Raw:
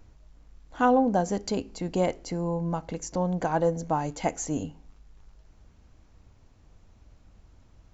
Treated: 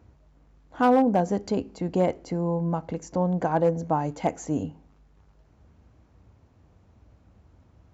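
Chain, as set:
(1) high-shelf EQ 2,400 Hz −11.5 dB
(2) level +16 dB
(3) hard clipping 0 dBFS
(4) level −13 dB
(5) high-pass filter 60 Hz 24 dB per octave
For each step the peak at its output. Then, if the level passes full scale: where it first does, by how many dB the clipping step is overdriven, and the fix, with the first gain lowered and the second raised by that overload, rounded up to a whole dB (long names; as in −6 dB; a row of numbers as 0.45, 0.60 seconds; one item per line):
−12.5, +3.5, 0.0, −13.0, −10.5 dBFS
step 2, 3.5 dB
step 2 +12 dB, step 4 −9 dB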